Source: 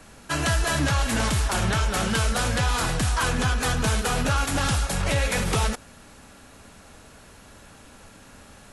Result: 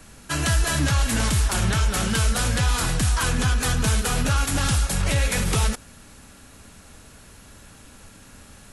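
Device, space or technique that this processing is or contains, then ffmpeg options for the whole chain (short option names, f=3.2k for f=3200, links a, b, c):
smiley-face EQ: -af "lowshelf=f=170:g=4,equalizer=f=690:t=o:w=1.5:g=-3.5,highshelf=f=6.9k:g=6"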